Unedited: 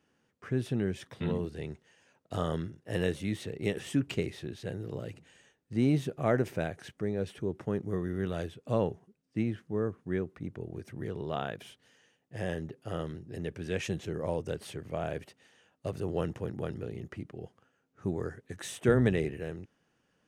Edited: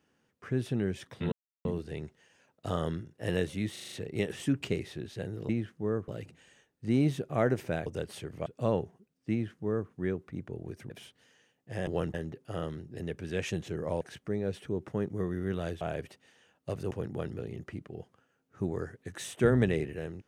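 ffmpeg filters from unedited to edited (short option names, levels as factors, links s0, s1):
-filter_complex "[0:a]asplit=17[s0][s1][s2][s3][s4][s5][s6][s7][s8][s9][s10][s11][s12][s13][s14][s15][s16];[s0]atrim=end=1.32,asetpts=PTS-STARTPTS,afade=t=out:st=1.316:d=0.004:c=hsin,apad=pad_dur=0.33[s17];[s1]atrim=start=1.32:end=3.432,asetpts=PTS-STARTPTS,afade=t=in:d=0.004:c=hsin[s18];[s2]atrim=start=3.388:end=3.432[s19];[s3]atrim=start=3.388:end=3.432[s20];[s4]atrim=start=3.388:end=3.432[s21];[s5]atrim=start=3.388:end=3.432[s22];[s6]atrim=start=3.388:end=4.962[s23];[s7]atrim=start=9.388:end=9.982[s24];[s8]atrim=start=4.958:end=6.742[s25];[s9]atrim=start=14.378:end=14.982[s26];[s10]atrim=start=8.538:end=10.982[s27];[s11]atrim=start=11.538:end=12.512[s28];[s12]atrim=start=16.078:end=16.352[s29];[s13]atrim=start=12.508:end=14.382[s30];[s14]atrim=start=6.738:end=8.542[s31];[s15]atrim=start=14.978:end=16.082[s32];[s16]atrim=start=16.348[s33];[s17][s18]concat=n=2:v=0:a=1[s34];[s34][s19]acrossfade=d=0.004:c1=hsin:c2=hsin[s35];[s35][s20]acrossfade=d=0.004:c1=hsin:c2=hsin[s36];[s36][s21]acrossfade=d=0.004:c1=hsin:c2=hsin[s37];[s37][s22]acrossfade=d=0.004:c1=hsin:c2=hsin[s38];[s38][s23]acrossfade=d=0.004:c1=hsin:c2=hsin[s39];[s39][s24]acrossfade=d=0.004:c1=hsin:c2=hsin[s40];[s40][s25]acrossfade=d=0.004:c1=hsin:c2=hsin[s41];[s41][s26]acrossfade=d=0.004:c1=hsin:c2=hsin[s42];[s42][s27]acrossfade=d=0.004:c1=hsin:c2=hsin[s43];[s43][s28]acrossfade=d=0.004:c1=hsin:c2=hsin[s44];[s44][s29]acrossfade=d=0.004:c1=hsin:c2=hsin[s45];[s45][s30]acrossfade=d=0.004:c1=hsin:c2=hsin[s46];[s46][s31]acrossfade=d=0.004:c1=hsin:c2=hsin[s47];[s47][s32]acrossfade=d=0.004:c1=hsin:c2=hsin[s48];[s48][s33]acrossfade=d=0.004:c1=hsin:c2=hsin"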